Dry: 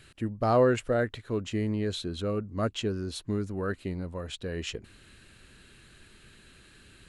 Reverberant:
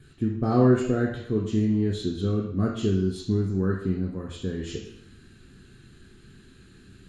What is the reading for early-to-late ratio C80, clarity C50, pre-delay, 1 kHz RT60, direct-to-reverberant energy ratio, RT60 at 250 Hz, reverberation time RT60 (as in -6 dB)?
7.5 dB, 4.0 dB, 3 ms, 0.65 s, -1.5 dB, 0.65 s, 0.65 s